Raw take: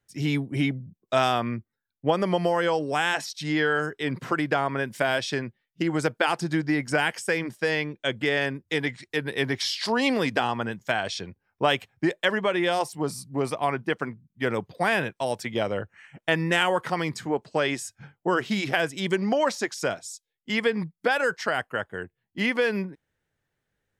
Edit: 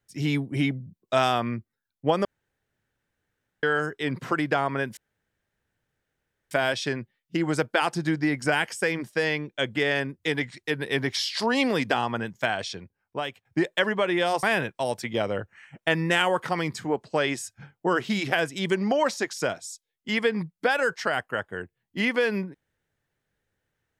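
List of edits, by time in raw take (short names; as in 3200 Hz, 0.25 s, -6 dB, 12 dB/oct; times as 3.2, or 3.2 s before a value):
2.25–3.63 room tone
4.97 insert room tone 1.54 s
10.93–11.91 fade out, to -15 dB
12.89–14.84 cut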